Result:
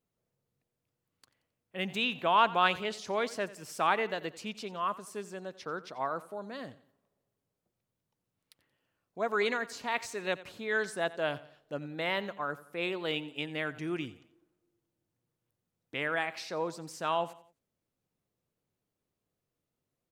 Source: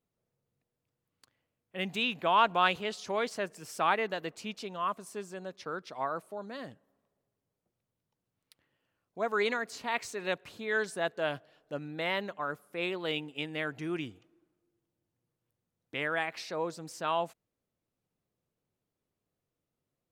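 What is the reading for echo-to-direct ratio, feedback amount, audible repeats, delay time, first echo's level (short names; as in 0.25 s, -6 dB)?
-17.5 dB, 39%, 3, 89 ms, -18.0 dB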